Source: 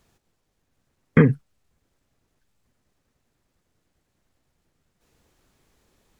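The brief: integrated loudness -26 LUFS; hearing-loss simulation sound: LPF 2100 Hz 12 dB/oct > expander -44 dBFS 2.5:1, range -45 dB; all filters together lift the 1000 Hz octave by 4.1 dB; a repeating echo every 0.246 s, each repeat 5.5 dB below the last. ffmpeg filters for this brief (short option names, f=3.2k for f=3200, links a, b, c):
-af "lowpass=2.1k,equalizer=f=1k:t=o:g=5.5,aecho=1:1:246|492|738|984|1230|1476|1722:0.531|0.281|0.149|0.079|0.0419|0.0222|0.0118,agate=range=-45dB:threshold=-44dB:ratio=2.5,volume=-4dB"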